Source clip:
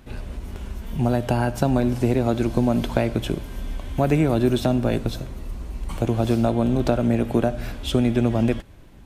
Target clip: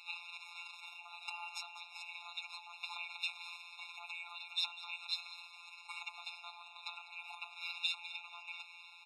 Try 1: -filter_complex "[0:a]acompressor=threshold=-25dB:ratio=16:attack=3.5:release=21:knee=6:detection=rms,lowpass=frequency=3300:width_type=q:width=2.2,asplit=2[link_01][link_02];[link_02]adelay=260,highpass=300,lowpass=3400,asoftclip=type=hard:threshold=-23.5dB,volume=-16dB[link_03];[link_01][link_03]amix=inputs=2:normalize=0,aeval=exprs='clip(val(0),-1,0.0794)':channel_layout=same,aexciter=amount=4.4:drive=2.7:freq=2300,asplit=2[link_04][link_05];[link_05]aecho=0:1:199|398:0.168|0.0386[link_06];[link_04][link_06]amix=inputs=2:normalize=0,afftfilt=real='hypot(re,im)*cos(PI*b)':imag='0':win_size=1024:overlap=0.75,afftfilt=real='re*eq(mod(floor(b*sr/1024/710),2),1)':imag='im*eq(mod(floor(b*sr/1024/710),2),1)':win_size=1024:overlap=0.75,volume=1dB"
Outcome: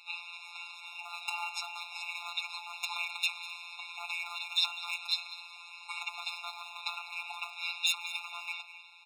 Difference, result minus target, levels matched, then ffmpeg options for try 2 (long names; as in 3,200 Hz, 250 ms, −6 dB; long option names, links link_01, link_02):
downward compressor: peak gain reduction −10 dB
-filter_complex "[0:a]acompressor=threshold=-35.5dB:ratio=16:attack=3.5:release=21:knee=6:detection=rms,lowpass=frequency=3300:width_type=q:width=2.2,asplit=2[link_01][link_02];[link_02]adelay=260,highpass=300,lowpass=3400,asoftclip=type=hard:threshold=-23.5dB,volume=-16dB[link_03];[link_01][link_03]amix=inputs=2:normalize=0,aeval=exprs='clip(val(0),-1,0.0794)':channel_layout=same,aexciter=amount=4.4:drive=2.7:freq=2300,asplit=2[link_04][link_05];[link_05]aecho=0:1:199|398:0.168|0.0386[link_06];[link_04][link_06]amix=inputs=2:normalize=0,afftfilt=real='hypot(re,im)*cos(PI*b)':imag='0':win_size=1024:overlap=0.75,afftfilt=real='re*eq(mod(floor(b*sr/1024/710),2),1)':imag='im*eq(mod(floor(b*sr/1024/710),2),1)':win_size=1024:overlap=0.75,volume=1dB"